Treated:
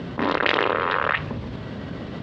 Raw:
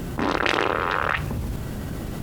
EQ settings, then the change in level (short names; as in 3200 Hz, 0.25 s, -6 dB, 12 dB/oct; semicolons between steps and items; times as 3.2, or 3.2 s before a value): speaker cabinet 130–4000 Hz, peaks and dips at 140 Hz -5 dB, 210 Hz -3 dB, 340 Hz -6 dB, 790 Hz -5 dB, 1400 Hz -4 dB, 2500 Hz -3 dB; +3.5 dB